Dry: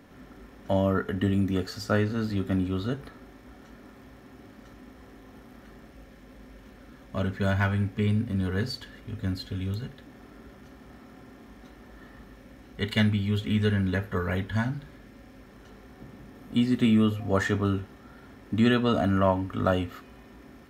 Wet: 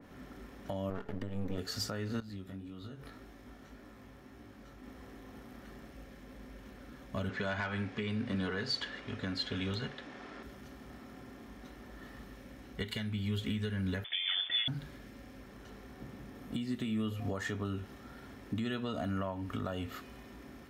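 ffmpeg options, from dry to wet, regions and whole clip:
-filter_complex "[0:a]asettb=1/sr,asplit=3[a][b][c];[a]atrim=end=0.904[d];[b]atrim=start=0.9:end=1.58,asetpts=PTS-STARTPTS,afade=t=in:d=0.004:c=qsin,afade=t=out:st=0.676:d=0.004:c=qsin,aeval=exprs='max(val(0),0)':c=same,highshelf=f=2.3k:g=-12[e];[c]atrim=start=1.576[f];[d][e]acrossfade=d=0.004:c1=hsin:c2=qsin[g];[g][f]acrossfade=d=0.004:c1=qsin:c2=hsin,asettb=1/sr,asplit=3[h][i][j];[h]atrim=end=2.204[k];[i]atrim=start=2.2:end=4.84,asetpts=PTS-STARTPTS,afade=t=in:d=0.004:c=qsin,afade=t=out:st=2.636:d=0.004:c=qsin,acompressor=threshold=-39dB:ratio=6:attack=3.2:release=140:knee=1:detection=peak,flanger=delay=17:depth=5.2:speed=1.8[l];[j]atrim=start=4.836[m];[k][l]acrossfade=d=0.004:c1=hsin:c2=qsin[n];[n][m]acrossfade=d=0.004:c1=qsin:c2=hsin,asettb=1/sr,asplit=3[o][p][q];[o]atrim=end=7.294[r];[p]atrim=start=7.29:end=10.43,asetpts=PTS-STARTPTS,afade=t=in:d=0.004:c=qsin,afade=t=out:st=3.136:d=0.004:c=qsin,lowpass=7.3k,equalizer=f=80:t=o:w=0.31:g=-12.5,asplit=2[s][t];[t]highpass=f=720:p=1,volume=13dB,asoftclip=type=tanh:threshold=-12.5dB[u];[s][u]amix=inputs=2:normalize=0,lowpass=f=2.7k:p=1,volume=-6dB[v];[q]atrim=start=10.426[w];[r][v]acrossfade=d=0.004:c1=hsin:c2=qsin[x];[x][w]acrossfade=d=0.004:c1=qsin:c2=hsin,asettb=1/sr,asplit=3[y][z][aa];[y]atrim=end=14.044[ab];[z]atrim=start=14.04:end=14.68,asetpts=PTS-STARTPTS,afade=t=in:d=0.004:c=qsin,afade=t=out:st=0.636:d=0.004:c=qsin,highpass=68,acrusher=bits=8:dc=4:mix=0:aa=0.000001,lowpass=f=3.1k:t=q:w=0.5098,lowpass=f=3.1k:t=q:w=0.6013,lowpass=f=3.1k:t=q:w=0.9,lowpass=f=3.1k:t=q:w=2.563,afreqshift=-3600[ac];[aa]atrim=start=14.676[ad];[ab][ac]acrossfade=d=0.004:c1=hsin:c2=qsin[ae];[ae][ad]acrossfade=d=0.004:c1=qsin:c2=hsin,acompressor=threshold=-28dB:ratio=6,alimiter=level_in=0.5dB:limit=-24dB:level=0:latency=1:release=224,volume=-0.5dB,adynamicequalizer=threshold=0.00158:dfrequency=2400:dqfactor=0.7:tfrequency=2400:tqfactor=0.7:attack=5:release=100:ratio=0.375:range=2:mode=boostabove:tftype=highshelf,volume=-1.5dB"

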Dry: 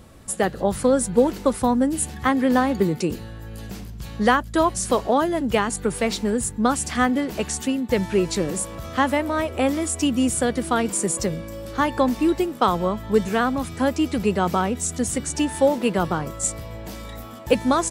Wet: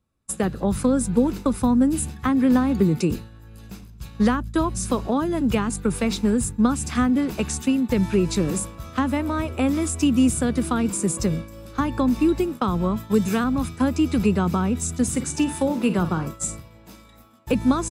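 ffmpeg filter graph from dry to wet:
-filter_complex "[0:a]asettb=1/sr,asplit=3[a][b][c];[a]atrim=end=12.964[d];[b]atrim=start=12.96:end=13.44,asetpts=PTS-STARTPTS,afade=t=in:d=0.004:c=qsin,afade=t=out:st=0.476:d=0.004:c=qsin,highpass=87,highshelf=f=4.1k:g=8.5[e];[c]atrim=start=13.436[f];[d][e]acrossfade=d=0.004:c1=hsin:c2=qsin[g];[g][f]acrossfade=d=0.004:c1=qsin:c2=hsin,asettb=1/sr,asplit=3[h][i][j];[h]atrim=end=15.034[k];[i]atrim=start=15.03:end=17.38,asetpts=PTS-STARTPTS,afade=t=in:d=0.004:c=qsin,afade=t=out:st=2.346:d=0.004:c=qsin,lowshelf=f=66:g=-9,asplit=2[l][m];[m]adelay=49,volume=-12.5dB[n];[l][n]amix=inputs=2:normalize=0,atrim=end_sample=103635[o];[j]atrim=start=17.376[p];[k][o]acrossfade=d=0.004:c1=hsin:c2=qsin[q];[q][p]acrossfade=d=0.004:c1=qsin:c2=hsin,agate=range=-33dB:threshold=-26dB:ratio=3:detection=peak,aecho=1:1:0.8:0.33,acrossover=split=320[r][s];[s]acompressor=threshold=-30dB:ratio=3[t];[r][t]amix=inputs=2:normalize=0,volume=3dB"

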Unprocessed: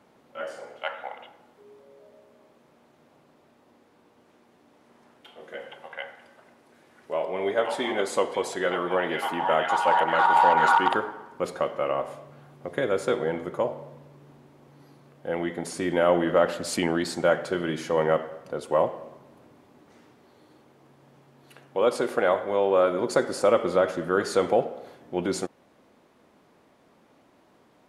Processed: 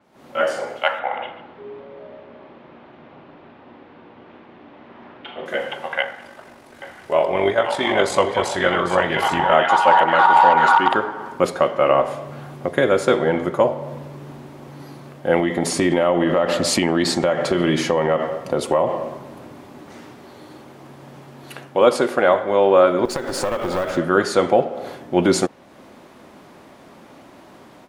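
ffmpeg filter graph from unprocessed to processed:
-filter_complex "[0:a]asettb=1/sr,asplit=3[a][b][c];[a]atrim=end=0.994[d];[b]atrim=start=0.99:end=5.46,asetpts=PTS-STARTPTS,afade=t=in:d=0.004:c=qsin,afade=t=out:st=4.466:d=0.004:c=qsin,lowpass=f=3.3k:w=0.5412,lowpass=f=3.3k:w=1.3066,aecho=1:1:44|141:0.335|0.211,atrim=end_sample=197127[e];[c]atrim=start=5.456[f];[d][e]acrossfade=d=0.004:c1=hsin:c2=qsin[g];[g][f]acrossfade=d=0.004:c1=qsin:c2=hsin,asettb=1/sr,asplit=3[h][i][j];[h]atrim=end=6.024[k];[i]atrim=start=6.02:end=9.52,asetpts=PTS-STARTPTS,afade=t=in:d=0.004:c=qsin,afade=t=out:st=3.496:d=0.004:c=qsin,asubboost=boost=10.5:cutoff=93,tremolo=f=48:d=0.462,aecho=1:1:799:0.398,atrim=end_sample=154350[l];[j]atrim=start=9.516[m];[k][l]acrossfade=d=0.004:c1=hsin:c2=qsin[n];[n][m]acrossfade=d=0.004:c1=qsin:c2=hsin,asettb=1/sr,asplit=3[o][p][q];[o]atrim=end=15.394[r];[p]atrim=start=15.39:end=19.02,asetpts=PTS-STARTPTS,afade=t=in:d=0.004:c=qsin,afade=t=out:st=3.626:d=0.004:c=qsin,bandreject=f=1.5k:w=7.6,acompressor=threshold=-27dB:ratio=6:attack=3.2:release=140:knee=1:detection=peak[s];[q]atrim=start=19.016[t];[r][s]acrossfade=d=0.004:c1=hsin:c2=qsin[u];[u][t]acrossfade=d=0.004:c1=qsin:c2=hsin,asettb=1/sr,asplit=3[v][w][x];[v]atrim=end=23.054[y];[w]atrim=start=23.05:end=23.97,asetpts=PTS-STARTPTS,afade=t=in:d=0.004:c=qsin,afade=t=out:st=0.916:d=0.004:c=qsin,acrusher=bits=6:mode=log:mix=0:aa=0.000001,acompressor=threshold=-30dB:ratio=8:attack=3.2:release=140:knee=1:detection=peak,aeval=exprs='clip(val(0),-1,0.015)':c=same[z];[x]atrim=start=23.966[aa];[y][z]acrossfade=d=0.004:c1=hsin:c2=qsin[ab];[ab][aa]acrossfade=d=0.004:c1=qsin:c2=hsin,dynaudnorm=f=120:g=3:m=16dB,bandreject=f=460:w=12,adynamicequalizer=threshold=0.01:dfrequency=7300:dqfactor=0.7:tfrequency=7300:tqfactor=0.7:attack=5:release=100:ratio=0.375:range=3.5:mode=cutabove:tftype=highshelf,volume=-1dB"

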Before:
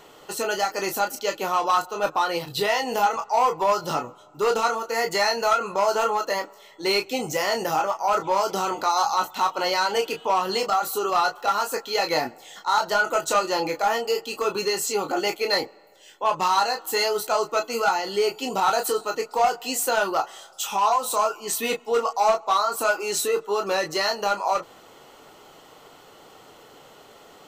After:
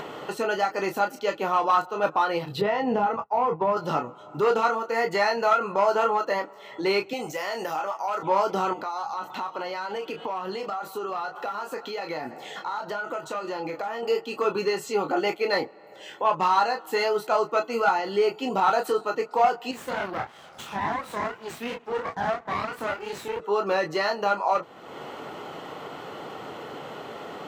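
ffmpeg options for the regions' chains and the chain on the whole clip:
-filter_complex "[0:a]asettb=1/sr,asplit=3[a][b][c];[a]atrim=end=2.614[d];[b]atrim=start=2.61:end=3.77,asetpts=PTS-STARTPTS,afade=t=in:d=0.004:c=qsin,afade=t=out:st=1.156:d=0.004:c=qsin,aemphasis=mode=reproduction:type=riaa,agate=range=-33dB:threshold=-25dB:ratio=3:release=100:detection=peak,acompressor=threshold=-20dB:ratio=3:attack=3.2:release=140:knee=1:detection=peak[e];[c]atrim=start=3.766[f];[d][e]acrossfade=d=0.004:c1=hsin:c2=qsin[g];[g][f]acrossfade=d=0.004:c1=qsin:c2=hsin,asettb=1/sr,asplit=3[h][i][j];[h]atrim=end=7.134[k];[i]atrim=start=7.13:end=8.23,asetpts=PTS-STARTPTS,afade=t=in:d=0.004:c=qsin,afade=t=out:st=1.096:d=0.004:c=qsin,highpass=f=430:p=1,highshelf=f=5k:g=8.5,acompressor=threshold=-28dB:ratio=2:attack=3.2:release=140:knee=1:detection=peak[l];[j]atrim=start=8.226[m];[k][l]acrossfade=d=0.004:c1=hsin:c2=qsin[n];[n][m]acrossfade=d=0.004:c1=qsin:c2=hsin,asettb=1/sr,asplit=3[o][p][q];[o]atrim=end=8.734[r];[p]atrim=start=8.73:end=14.03,asetpts=PTS-STARTPTS,afade=t=in:d=0.004:c=qsin,afade=t=out:st=5.296:d=0.004:c=qsin,acompressor=threshold=-34dB:ratio=2.5:attack=3.2:release=140:knee=1:detection=peak,aecho=1:1:569:0.0891,atrim=end_sample=233730[s];[q]atrim=start=14.026[t];[r][s]acrossfade=d=0.004:c1=hsin:c2=qsin[u];[u][t]acrossfade=d=0.004:c1=qsin:c2=hsin,asettb=1/sr,asplit=3[v][w][x];[v]atrim=end=19.714[y];[w]atrim=start=19.71:end=23.4,asetpts=PTS-STARTPTS,afade=t=in:d=0.004:c=qsin,afade=t=out:st=3.686:d=0.004:c=qsin,flanger=delay=20:depth=7.6:speed=2.9,aeval=exprs='max(val(0),0)':c=same[z];[x]atrim=start=23.396[aa];[y][z]acrossfade=d=0.004:c1=hsin:c2=qsin[ab];[ab][aa]acrossfade=d=0.004:c1=qsin:c2=hsin,highpass=130,acompressor=mode=upward:threshold=-26dB:ratio=2.5,bass=f=250:g=4,treble=f=4k:g=-15"

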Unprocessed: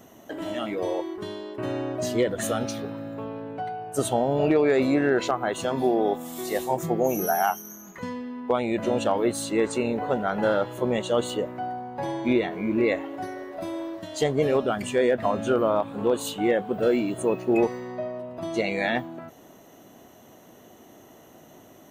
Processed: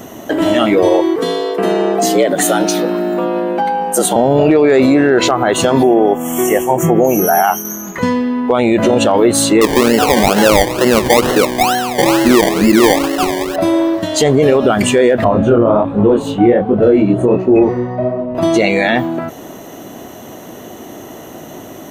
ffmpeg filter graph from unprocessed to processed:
-filter_complex "[0:a]asettb=1/sr,asplit=3[a][b][c];[a]atrim=end=1.164[d];[b]atrim=start=1.16:end=4.16,asetpts=PTS-STARTPTS,afade=t=in:d=0.004:c=qsin,afade=t=out:st=2.996:d=0.004:c=qsin,highshelf=f=6.6k:g=7.5,acompressor=threshold=-31dB:ratio=2:attack=3.2:release=140:knee=1:detection=peak,afreqshift=74[e];[c]atrim=start=4.156[f];[d][e]acrossfade=d=0.004:c1=hsin:c2=qsin[g];[g][f]acrossfade=d=0.004:c1=qsin:c2=hsin,asettb=1/sr,asplit=3[h][i][j];[h]atrim=end=5.834[k];[i]atrim=start=5.83:end=7.65,asetpts=PTS-STARTPTS,afade=t=in:d=0.004:c=qsin,afade=t=out:st=1.816:d=0.004:c=qsin,tremolo=f=1.8:d=0.43,asuperstop=centerf=4300:order=20:qfactor=2[l];[j]atrim=start=7.646[m];[k][l]acrossfade=d=0.004:c1=hsin:c2=qsin[n];[n][m]acrossfade=d=0.004:c1=qsin:c2=hsin,asettb=1/sr,asplit=3[o][p][q];[o]atrim=end=9.614[r];[p]atrim=start=9.61:end=13.56,asetpts=PTS-STARTPTS,afade=t=in:d=0.004:c=qsin,afade=t=out:st=3.946:d=0.004:c=qsin,highpass=160,acrusher=samples=26:mix=1:aa=0.000001:lfo=1:lforange=15.6:lforate=2.2[s];[q]atrim=start=13.556[t];[r][s]acrossfade=d=0.004:c1=hsin:c2=qsin[u];[u][t]acrossfade=d=0.004:c1=qsin:c2=hsin,asettb=1/sr,asplit=3[v][w][x];[v]atrim=end=15.244[y];[w]atrim=start=15.24:end=18.35,asetpts=PTS-STARTPTS,afade=t=in:d=0.004:c=qsin,afade=t=out:st=3.106:d=0.004:c=qsin,lowpass=f=1k:p=1,lowshelf=f=130:g=10,flanger=delay=19.5:depth=6.4:speed=1.3[z];[x]atrim=start=18.346[aa];[y][z]acrossfade=d=0.004:c1=hsin:c2=qsin[ab];[ab][aa]acrossfade=d=0.004:c1=qsin:c2=hsin,equalizer=f=330:t=o:w=0.77:g=2,alimiter=level_in=19dB:limit=-1dB:release=50:level=0:latency=1,volume=-1dB"

